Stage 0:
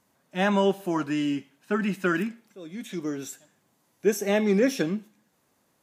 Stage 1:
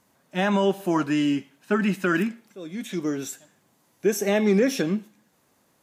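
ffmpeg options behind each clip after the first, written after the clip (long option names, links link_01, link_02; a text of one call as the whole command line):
ffmpeg -i in.wav -af "alimiter=limit=-15.5dB:level=0:latency=1:release=102,volume=4dB" out.wav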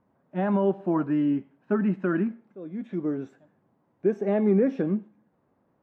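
ffmpeg -i in.wav -af "lowpass=1400,tiltshelf=frequency=970:gain=3.5,volume=-4dB" out.wav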